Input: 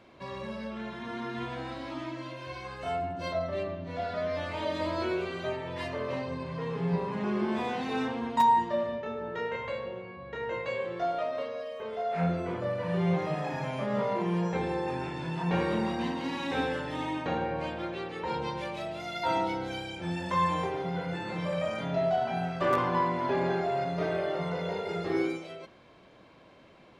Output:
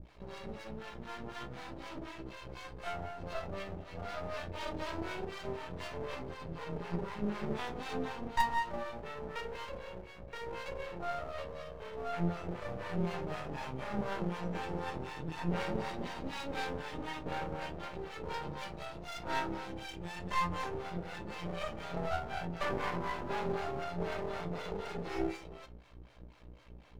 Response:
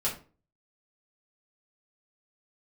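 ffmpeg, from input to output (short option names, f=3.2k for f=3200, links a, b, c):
-filter_complex "[0:a]aeval=exprs='val(0)+0.00562*(sin(2*PI*60*n/s)+sin(2*PI*2*60*n/s)/2+sin(2*PI*3*60*n/s)/3+sin(2*PI*4*60*n/s)/4+sin(2*PI*5*60*n/s)/5)':c=same,acrossover=split=530[a][b];[a]aeval=exprs='val(0)*(1-1/2+1/2*cos(2*PI*4*n/s))':c=same[c];[b]aeval=exprs='val(0)*(1-1/2-1/2*cos(2*PI*4*n/s))':c=same[d];[c][d]amix=inputs=2:normalize=0,aeval=exprs='max(val(0),0)':c=same,asplit=2[e][f];[1:a]atrim=start_sample=2205,asetrate=88200,aresample=44100[g];[f][g]afir=irnorm=-1:irlink=0,volume=-8dB[h];[e][h]amix=inputs=2:normalize=0"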